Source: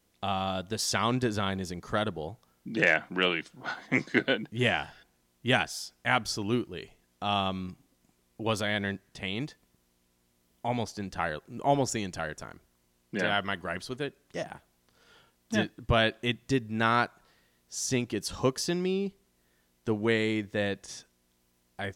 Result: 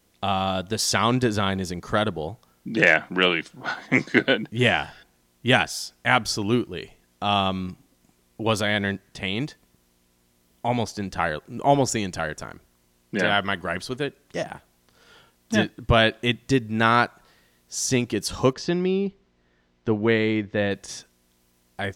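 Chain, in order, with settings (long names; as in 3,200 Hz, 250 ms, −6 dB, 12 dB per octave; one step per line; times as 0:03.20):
0:18.53–0:20.71: high-frequency loss of the air 170 metres
level +6.5 dB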